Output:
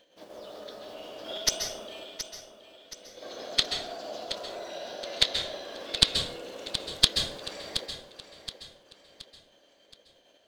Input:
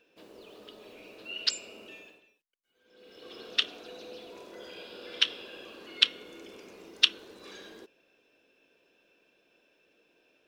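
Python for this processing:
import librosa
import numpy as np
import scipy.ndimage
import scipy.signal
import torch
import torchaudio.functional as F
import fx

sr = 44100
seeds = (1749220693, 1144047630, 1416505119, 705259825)

p1 = fx.tracing_dist(x, sr, depth_ms=0.031)
p2 = fx.dynamic_eq(p1, sr, hz=640.0, q=1.2, threshold_db=-55.0, ratio=4.0, max_db=6)
p3 = fx.level_steps(p2, sr, step_db=17)
p4 = p2 + F.gain(torch.from_numpy(p3), -1.0).numpy()
p5 = fx.formant_shift(p4, sr, semitones=3)
p6 = p5 + fx.echo_feedback(p5, sr, ms=723, feedback_pct=41, wet_db=-11.0, dry=0)
y = fx.rev_plate(p6, sr, seeds[0], rt60_s=0.57, hf_ratio=0.65, predelay_ms=120, drr_db=5.0)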